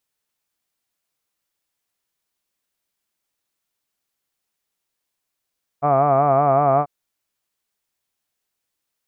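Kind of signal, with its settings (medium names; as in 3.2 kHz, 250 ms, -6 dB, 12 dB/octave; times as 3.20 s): formant vowel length 1.04 s, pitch 140 Hz, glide 0 st, F1 690 Hz, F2 1.2 kHz, F3 2.3 kHz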